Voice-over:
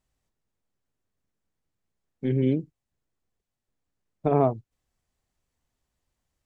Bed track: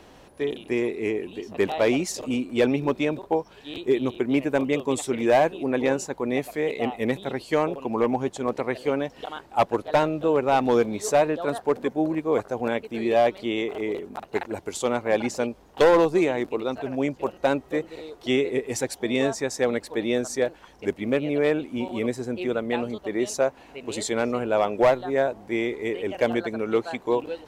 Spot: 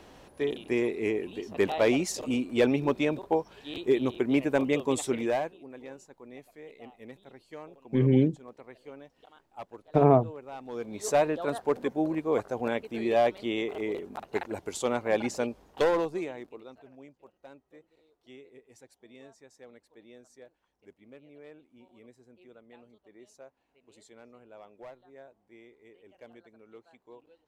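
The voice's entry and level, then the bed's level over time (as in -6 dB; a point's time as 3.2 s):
5.70 s, +1.5 dB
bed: 5.13 s -2.5 dB
5.7 s -21.5 dB
10.65 s -21.5 dB
11.07 s -4 dB
15.63 s -4 dB
17.21 s -28 dB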